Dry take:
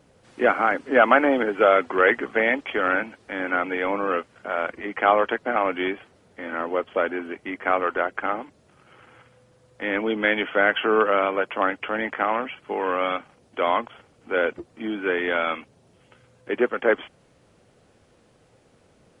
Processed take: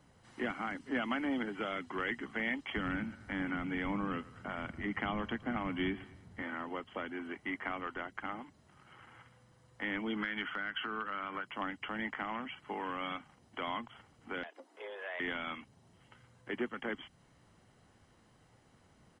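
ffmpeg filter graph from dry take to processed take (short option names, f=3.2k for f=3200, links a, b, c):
-filter_complex "[0:a]asettb=1/sr,asplit=3[a][b][c];[a]atrim=end=2.764[d];[b]atrim=start=2.76:end=6.42,asetpts=PTS-STARTPTS,afade=t=in:d=0.004:c=qsin,afade=t=out:st=3.656:d=0.004:c=qsin,bass=f=250:g=12,treble=f=4k:g=0,aecho=1:1:112|224|336:0.0841|0.0328|0.0128,atrim=end_sample=161406[e];[c]atrim=start=6.416[f];[d][e]acrossfade=d=0.004:c1=hsin:c2=qsin[g];[g][f]acrossfade=d=0.004:c1=qsin:c2=hsin,asettb=1/sr,asplit=3[h][i][j];[h]atrim=end=10.134[k];[i]atrim=start=10.13:end=11.47,asetpts=PTS-STARTPTS,afade=t=in:d=0.004:c=qsin,afade=t=out:st=1.336:d=0.004:c=qsin,equalizer=f=1.4k:t=o:w=0.86:g=11,acompressor=threshold=-22dB:ratio=2:attack=3.2:release=140:knee=1:detection=peak[l];[j]atrim=start=11.466[m];[k][l]acrossfade=d=0.004:c1=hsin:c2=qsin[n];[n][m]acrossfade=d=0.004:c1=qsin:c2=hsin,asettb=1/sr,asplit=3[o][p][q];[o]atrim=end=14.434[r];[p]atrim=start=14.43:end=15.2,asetpts=PTS-STARTPTS,afade=t=in:d=0.004:c=qsin,afade=t=out:st=0.766:d=0.004:c=qsin,acompressor=threshold=-32dB:ratio=2:attack=3.2:release=140:knee=1:detection=peak,afreqshift=190[s];[q]atrim=start=15.196[t];[r][s]acrossfade=d=0.004:c1=hsin:c2=qsin[u];[u][t]acrossfade=d=0.004:c1=qsin:c2=hsin,equalizer=f=1.5k:t=o:w=0.23:g=8.5,acrossover=split=290|3000[v][w][x];[w]acompressor=threshold=-31dB:ratio=5[y];[v][y][x]amix=inputs=3:normalize=0,aecho=1:1:1:0.5,volume=-7dB"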